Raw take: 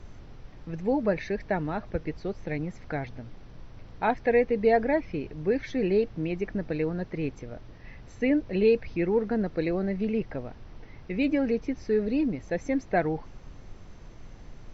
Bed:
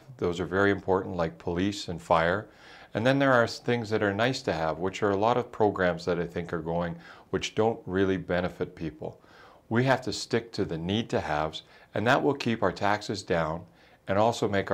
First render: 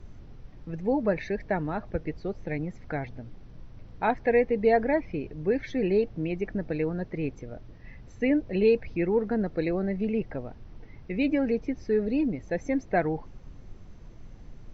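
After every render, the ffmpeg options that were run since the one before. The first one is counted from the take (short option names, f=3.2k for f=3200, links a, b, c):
-af "afftdn=nr=6:nf=-48"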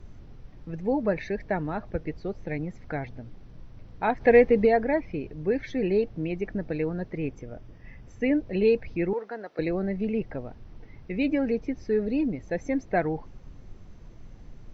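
-filter_complex "[0:a]asplit=3[a][b][c];[a]afade=t=out:st=4.2:d=0.02[d];[b]acontrast=49,afade=t=in:st=4.2:d=0.02,afade=t=out:st=4.65:d=0.02[e];[c]afade=t=in:st=4.65:d=0.02[f];[d][e][f]amix=inputs=3:normalize=0,asettb=1/sr,asplit=3[g][h][i];[g]atrim=end=7.174[j];[h]atrim=start=7.17:end=8.24,asetpts=PTS-STARTPTS,afade=t=in:d=0.004:c=qsin,afade=t=out:st=1.066:d=0.004:c=qsin,bandreject=f=4.1k:w=6.2[k];[i]atrim=start=8.236[l];[j][k]acrossfade=d=0.004:c1=hsin:c2=qsin[m];[m][l]acrossfade=d=0.004:c1=qsin:c2=hsin,asettb=1/sr,asplit=3[n][o][p];[n]atrim=end=9.134[q];[o]atrim=start=9.13:end=9.59,asetpts=PTS-STARTPTS,afade=t=in:d=0.004:c=qsin,afade=t=out:st=0.456:d=0.004:c=qsin,highpass=640[r];[p]atrim=start=9.586[s];[q][r]acrossfade=d=0.004:c1=hsin:c2=qsin[t];[t][s]acrossfade=d=0.004:c1=qsin:c2=hsin"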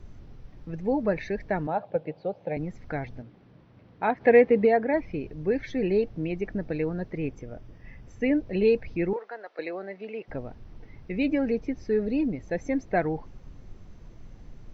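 -filter_complex "[0:a]asettb=1/sr,asplit=3[a][b][c];[a]atrim=end=1.674[d];[b]atrim=start=1.67:end=2.57,asetpts=PTS-STARTPTS,afade=t=in:d=0.004:c=qsin,afade=t=out:st=0.896:d=0.004:c=qsin,highpass=f=140:w=0.5412,highpass=f=140:w=1.3066,equalizer=f=230:t=q:w=4:g=-9,equalizer=f=360:t=q:w=4:g=-6,equalizer=f=550:t=q:w=4:g=10,equalizer=f=790:t=q:w=4:g=8,equalizer=f=1.2k:t=q:w=4:g=-5,equalizer=f=1.9k:t=q:w=4:g=-8,lowpass=f=3.9k:w=0.5412,lowpass=f=3.9k:w=1.3066[e];[c]atrim=start=2.566[f];[d][e]acrossfade=d=0.004:c1=hsin:c2=qsin[g];[g][f]acrossfade=d=0.004:c1=qsin:c2=hsin,asettb=1/sr,asplit=3[h][i][j];[h]atrim=end=3.224[k];[i]atrim=start=3.22:end=4.94,asetpts=PTS-STARTPTS,afade=t=in:d=0.004:c=qsin,afade=t=out:st=1.716:d=0.004:c=qsin,highpass=140,lowpass=3.6k[l];[j]atrim=start=4.936[m];[k][l]acrossfade=d=0.004:c1=hsin:c2=qsin[n];[n][m]acrossfade=d=0.004:c1=qsin:c2=hsin,asettb=1/sr,asplit=3[o][p][q];[o]atrim=end=9.164[r];[p]atrim=start=9.16:end=10.28,asetpts=PTS-STARTPTS,afade=t=in:d=0.004:c=qsin,afade=t=out:st=1.116:d=0.004:c=qsin,highpass=540,lowpass=4.7k[s];[q]atrim=start=10.276[t];[r][s]acrossfade=d=0.004:c1=hsin:c2=qsin[u];[u][t]acrossfade=d=0.004:c1=qsin:c2=hsin"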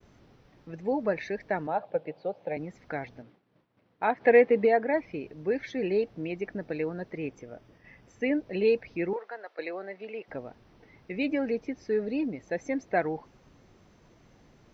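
-af "agate=range=-33dB:threshold=-46dB:ratio=3:detection=peak,highpass=f=350:p=1"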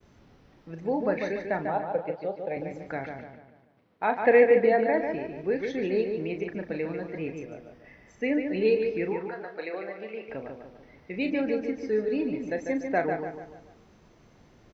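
-filter_complex "[0:a]asplit=2[a][b];[b]adelay=37,volume=-9.5dB[c];[a][c]amix=inputs=2:normalize=0,asplit=2[d][e];[e]adelay=146,lowpass=f=3.5k:p=1,volume=-5.5dB,asplit=2[f][g];[g]adelay=146,lowpass=f=3.5k:p=1,volume=0.45,asplit=2[h][i];[i]adelay=146,lowpass=f=3.5k:p=1,volume=0.45,asplit=2[j][k];[k]adelay=146,lowpass=f=3.5k:p=1,volume=0.45,asplit=2[l][m];[m]adelay=146,lowpass=f=3.5k:p=1,volume=0.45[n];[f][h][j][l][n]amix=inputs=5:normalize=0[o];[d][o]amix=inputs=2:normalize=0"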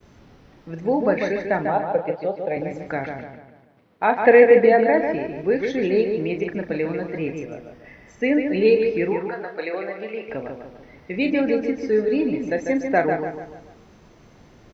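-af "volume=7dB,alimiter=limit=-3dB:level=0:latency=1"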